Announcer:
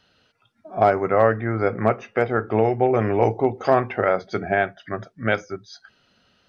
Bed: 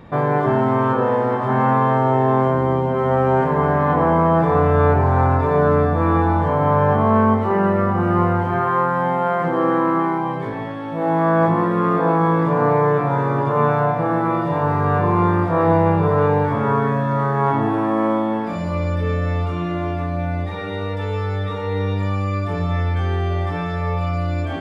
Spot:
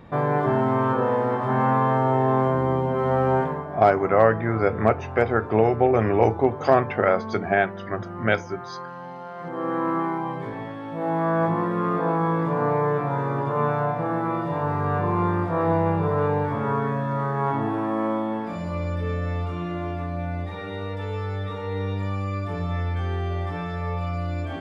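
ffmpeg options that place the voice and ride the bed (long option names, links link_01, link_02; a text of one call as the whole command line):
ffmpeg -i stem1.wav -i stem2.wav -filter_complex "[0:a]adelay=3000,volume=0dB[link_01];[1:a]volume=8dB,afade=type=out:start_time=3.36:duration=0.29:silence=0.199526,afade=type=in:start_time=9.34:duration=0.55:silence=0.251189[link_02];[link_01][link_02]amix=inputs=2:normalize=0" out.wav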